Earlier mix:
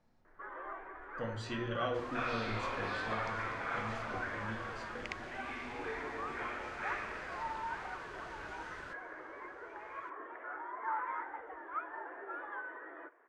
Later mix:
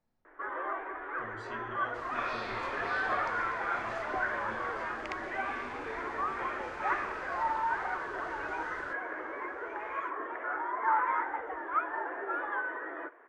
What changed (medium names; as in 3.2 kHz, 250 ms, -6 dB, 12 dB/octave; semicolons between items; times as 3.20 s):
speech -9.0 dB; first sound +9.0 dB